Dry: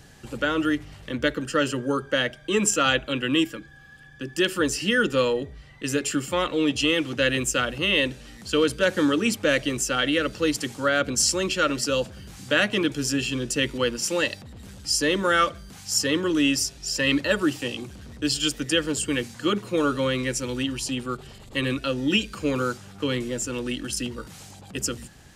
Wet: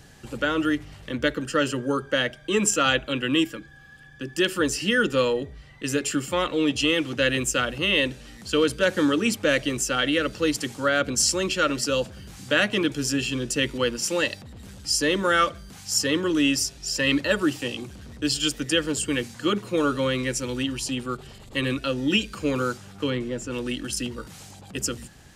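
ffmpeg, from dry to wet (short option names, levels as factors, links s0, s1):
-filter_complex "[0:a]asplit=3[s0][s1][s2];[s0]afade=t=out:st=23.09:d=0.02[s3];[s1]lowpass=f=2400:p=1,afade=t=in:st=23.09:d=0.02,afade=t=out:st=23.5:d=0.02[s4];[s2]afade=t=in:st=23.5:d=0.02[s5];[s3][s4][s5]amix=inputs=3:normalize=0"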